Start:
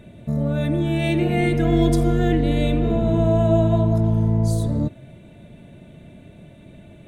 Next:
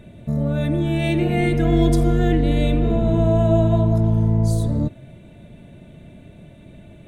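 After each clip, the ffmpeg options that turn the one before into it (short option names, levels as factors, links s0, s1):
-af "lowshelf=f=64:g=5.5"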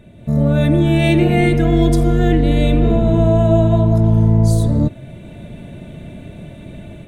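-af "dynaudnorm=f=190:g=3:m=3.35,volume=0.891"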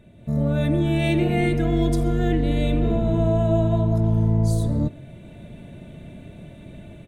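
-af "aecho=1:1:133:0.0708,volume=0.447"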